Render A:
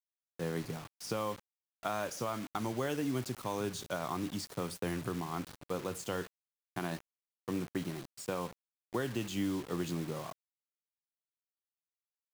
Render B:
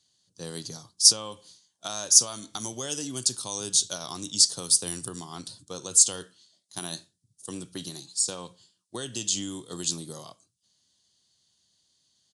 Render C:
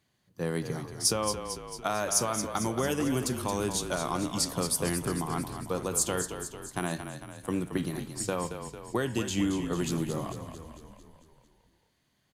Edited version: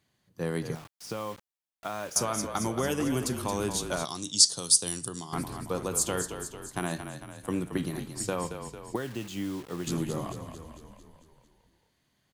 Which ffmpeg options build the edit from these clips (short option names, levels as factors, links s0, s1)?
-filter_complex "[0:a]asplit=2[s0][s1];[2:a]asplit=4[s2][s3][s4][s5];[s2]atrim=end=0.752[s6];[s0]atrim=start=0.748:end=2.162[s7];[s3]atrim=start=2.158:end=4.052[s8];[1:a]atrim=start=4.048:end=5.332[s9];[s4]atrim=start=5.328:end=8.962[s10];[s1]atrim=start=8.958:end=9.872[s11];[s5]atrim=start=9.868[s12];[s6][s7]acrossfade=d=0.004:c1=hsin:c2=hsin[s13];[s13][s8]acrossfade=d=0.004:c1=hsin:c2=hsin[s14];[s14][s9]acrossfade=d=0.004:c1=hsin:c2=hsin[s15];[s15][s10]acrossfade=d=0.004:c1=hsin:c2=hsin[s16];[s16][s11]acrossfade=d=0.004:c1=hsin:c2=hsin[s17];[s17][s12]acrossfade=d=0.004:c1=hsin:c2=hsin"